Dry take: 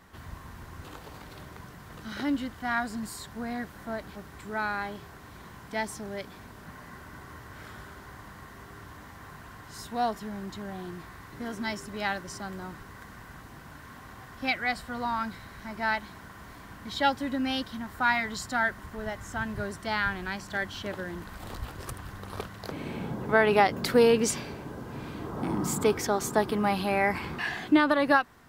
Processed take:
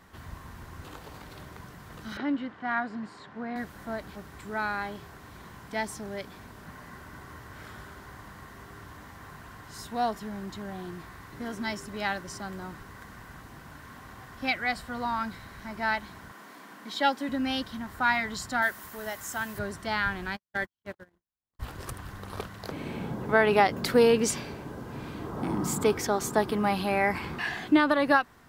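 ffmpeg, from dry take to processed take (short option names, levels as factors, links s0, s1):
-filter_complex "[0:a]asettb=1/sr,asplit=3[s0][s1][s2];[s0]atrim=end=2.174[s3];[s1]atrim=start=2.17:end=3.56,asetpts=PTS-STARTPTS,afade=t=in:d=0.004:c=qsin,afade=t=out:st=1.386:d=0.004:c=qsin,highpass=180,lowpass=2600[s4];[s2]atrim=start=3.556[s5];[s3][s4]acrossfade=d=0.004:c1=hsin:c2=qsin[s6];[s6][s5]acrossfade=d=0.004:c1=qsin:c2=hsin,asettb=1/sr,asplit=3[s7][s8][s9];[s7]atrim=end=16.324[s10];[s8]atrim=start=16.32:end=17.29,asetpts=PTS-STARTPTS,afade=t=in:d=0.004:c=qsin,afade=t=out:st=0.966:d=0.004:c=qsin,highpass=f=210:w=0.5412,highpass=f=210:w=1.3066[s11];[s9]atrim=start=17.286[s12];[s10][s11]acrossfade=d=0.004:c1=hsin:c2=qsin[s13];[s13][s12]acrossfade=d=0.004:c1=qsin:c2=hsin,asettb=1/sr,asplit=3[s14][s15][s16];[s14]atrim=end=18.624[s17];[s15]atrim=start=18.62:end=19.59,asetpts=PTS-STARTPTS,afade=t=in:d=0.004:c=qsin,afade=t=out:st=0.966:d=0.004:c=qsin,aemphasis=mode=production:type=bsi[s18];[s16]atrim=start=19.586[s19];[s17][s18]acrossfade=d=0.004:c1=hsin:c2=qsin[s20];[s20][s19]acrossfade=d=0.004:c1=qsin:c2=hsin,asplit=3[s21][s22][s23];[s21]afade=t=out:st=20.35:d=0.02[s24];[s22]agate=range=0.001:threshold=0.0224:ratio=16:release=100:detection=peak,afade=t=in:st=20.35:d=0.02,afade=t=out:st=21.59:d=0.02[s25];[s23]afade=t=in:st=21.59:d=0.02[s26];[s24][s25][s26]amix=inputs=3:normalize=0"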